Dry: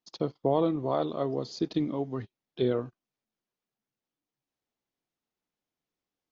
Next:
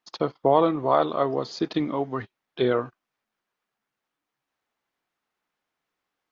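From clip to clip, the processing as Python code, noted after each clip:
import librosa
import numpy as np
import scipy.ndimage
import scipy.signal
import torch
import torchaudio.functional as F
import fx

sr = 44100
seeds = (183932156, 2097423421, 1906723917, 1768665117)

y = fx.peak_eq(x, sr, hz=1400.0, db=13.5, octaves=2.6)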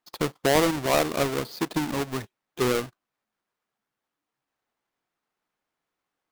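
y = fx.halfwave_hold(x, sr)
y = y * librosa.db_to_amplitude(-5.5)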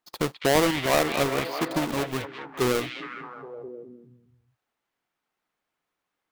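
y = fx.echo_stepped(x, sr, ms=206, hz=2700.0, octaves=-0.7, feedback_pct=70, wet_db=-2)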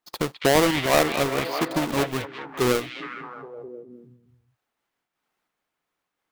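y = fx.am_noise(x, sr, seeds[0], hz=5.7, depth_pct=60)
y = y * librosa.db_to_amplitude(5.0)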